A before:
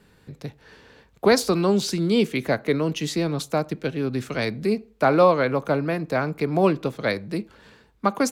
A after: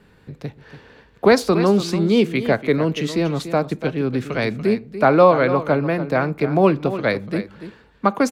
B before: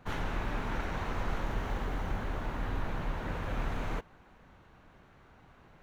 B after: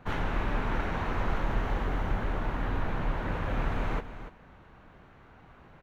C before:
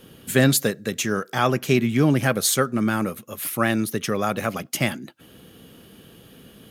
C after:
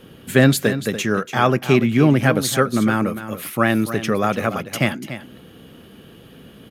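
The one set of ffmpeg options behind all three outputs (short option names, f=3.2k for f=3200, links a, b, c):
-af "bass=f=250:g=0,treble=f=4k:g=-8,aecho=1:1:289:0.251,volume=4dB"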